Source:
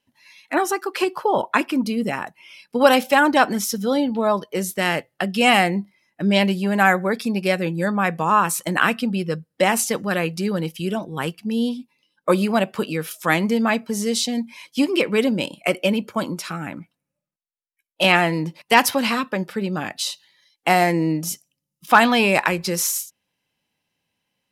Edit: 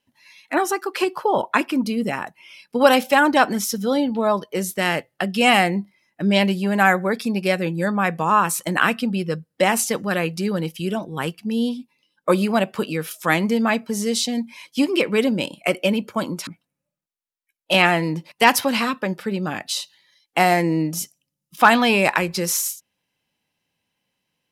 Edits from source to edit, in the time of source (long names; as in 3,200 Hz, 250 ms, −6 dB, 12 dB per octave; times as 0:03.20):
0:16.47–0:16.77: remove